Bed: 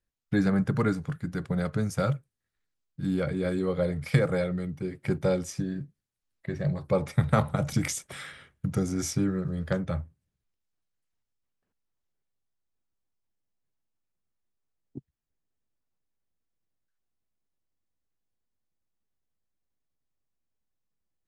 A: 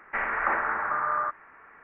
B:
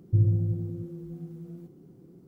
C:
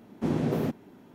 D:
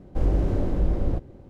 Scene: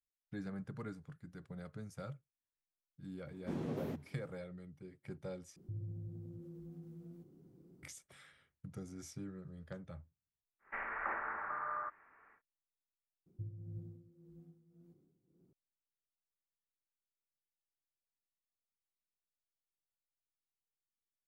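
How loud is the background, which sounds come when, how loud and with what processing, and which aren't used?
bed -19.5 dB
3.25 s: add C -13 dB
5.56 s: replace with B -9.5 dB + compression 2.5:1, threshold -37 dBFS
10.59 s: add A -13 dB, fades 0.10 s
13.26 s: replace with B -17 dB + tremolo 1.8 Hz, depth 72%
not used: D

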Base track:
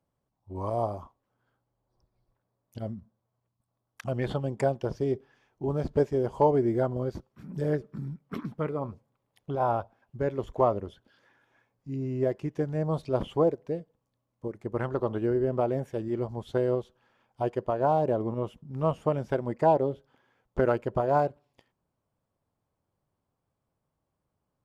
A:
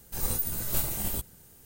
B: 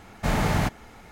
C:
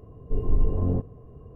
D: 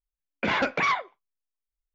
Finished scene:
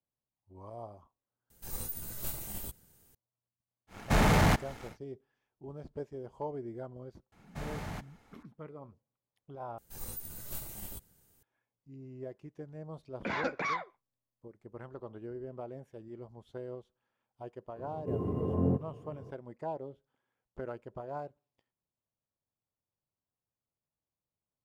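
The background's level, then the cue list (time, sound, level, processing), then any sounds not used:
base track -16 dB
1.50 s: replace with A -9.5 dB
3.87 s: add B -5.5 dB, fades 0.10 s + waveshaping leveller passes 2
7.32 s: add B -16 dB + saturation -13.5 dBFS
9.78 s: replace with A -12.5 dB
12.82 s: add D -8.5 dB + peaking EQ 3 kHz -9.5 dB 0.43 oct
17.76 s: add C + high-pass 110 Hz 24 dB/octave

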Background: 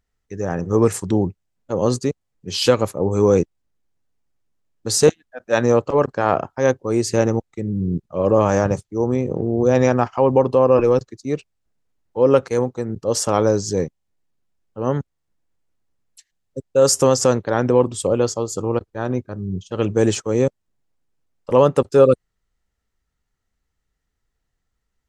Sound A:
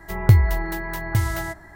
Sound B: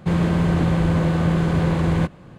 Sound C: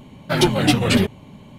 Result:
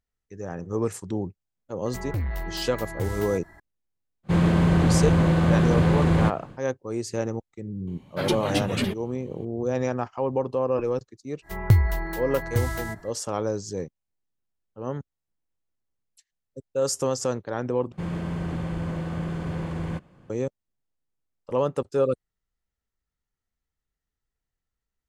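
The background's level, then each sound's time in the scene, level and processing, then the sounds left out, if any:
background -10.5 dB
1.85 s: add A -6 dB + saturation -18 dBFS
4.23 s: add B -0.5 dB, fades 0.10 s
7.87 s: add C -9.5 dB
11.41 s: add A -4 dB, fades 0.10 s
17.92 s: replace with B -11 dB + band-stop 3.9 kHz

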